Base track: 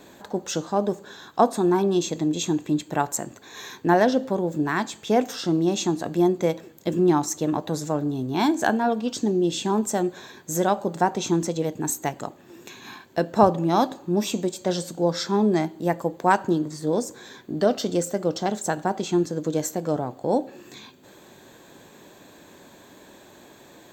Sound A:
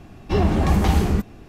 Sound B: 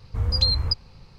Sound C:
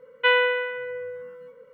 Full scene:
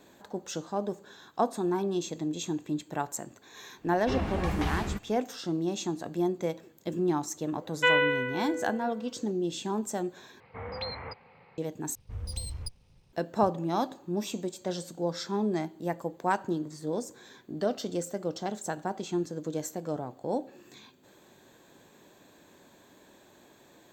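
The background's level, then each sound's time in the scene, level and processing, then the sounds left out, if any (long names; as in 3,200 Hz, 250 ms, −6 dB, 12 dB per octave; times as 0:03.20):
base track −8.5 dB
0:03.77: mix in A −14 dB, fades 0.10 s + parametric band 2,000 Hz +8 dB 2.7 octaves
0:07.59: mix in C −3.5 dB
0:10.40: overwrite with B −1 dB + loudspeaker in its box 270–2,600 Hz, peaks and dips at 320 Hz −8 dB, 480 Hz +4 dB, 790 Hz +6 dB, 2,100 Hz +9 dB
0:11.95: overwrite with B −13 dB + lower of the sound and its delayed copy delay 0.34 ms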